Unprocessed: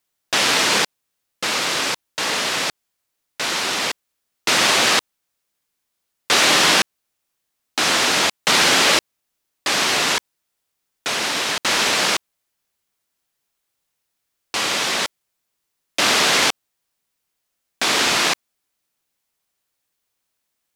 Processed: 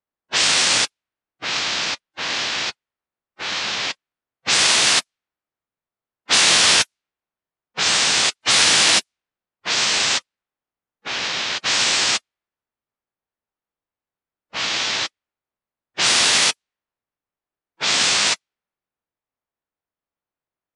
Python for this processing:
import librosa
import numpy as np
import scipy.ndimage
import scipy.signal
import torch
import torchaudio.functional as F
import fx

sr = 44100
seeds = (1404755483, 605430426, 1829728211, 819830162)

y = fx.quant_float(x, sr, bits=6)
y = fx.env_lowpass(y, sr, base_hz=1100.0, full_db=-13.0)
y = fx.high_shelf(y, sr, hz=2300.0, db=11.0)
y = fx.pitch_keep_formants(y, sr, semitones=-9.5)
y = y * librosa.db_to_amplitude(-4.5)